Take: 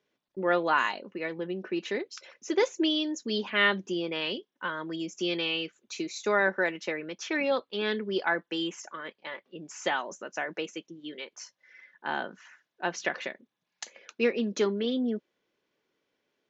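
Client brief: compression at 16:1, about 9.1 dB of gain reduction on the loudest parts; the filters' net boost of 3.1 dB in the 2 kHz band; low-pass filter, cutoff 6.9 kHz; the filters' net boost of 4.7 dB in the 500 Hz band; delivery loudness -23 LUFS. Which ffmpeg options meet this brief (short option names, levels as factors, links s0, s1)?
-af "lowpass=6900,equalizer=f=500:t=o:g=5.5,equalizer=f=2000:t=o:g=3.5,acompressor=threshold=0.0631:ratio=16,volume=2.66"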